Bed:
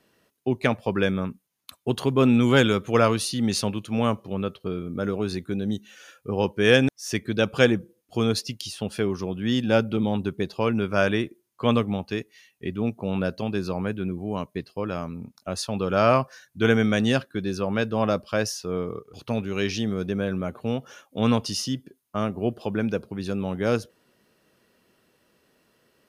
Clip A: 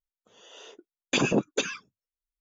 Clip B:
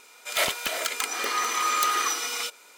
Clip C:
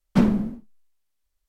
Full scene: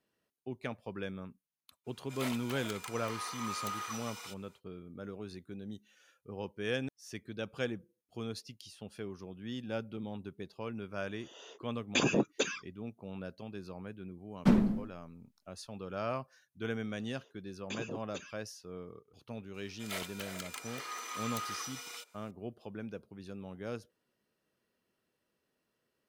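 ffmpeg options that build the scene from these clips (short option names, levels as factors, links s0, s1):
-filter_complex "[2:a]asplit=2[s0][s1];[1:a]asplit=2[s2][s3];[0:a]volume=0.141[s4];[s0]equalizer=f=950:t=o:w=0.73:g=6.5,atrim=end=2.77,asetpts=PTS-STARTPTS,volume=0.133,afade=t=in:d=0.05,afade=t=out:st=2.72:d=0.05,adelay=1840[s5];[s2]atrim=end=2.4,asetpts=PTS-STARTPTS,volume=0.596,afade=t=in:d=0.004:c=hsin,afade=t=out:st=2.396:d=0.004:c=hsin,adelay=477162S[s6];[3:a]atrim=end=1.48,asetpts=PTS-STARTPTS,volume=0.473,afade=t=in:d=0.004:c=hsin,afade=t=out:st=1.476:d=0.004:c=hsin,adelay=14300[s7];[s3]atrim=end=2.4,asetpts=PTS-STARTPTS,volume=0.133,afade=t=in:d=0.004:c=hsin,afade=t=out:st=2.396:d=0.004:c=hsin,adelay=16570[s8];[s1]atrim=end=2.77,asetpts=PTS-STARTPTS,volume=0.168,afade=t=in:d=0.004:c=hsin,afade=t=out:st=2.766:d=0.004:c=hsin,adelay=19540[s9];[s4][s5][s6][s7][s8][s9]amix=inputs=6:normalize=0"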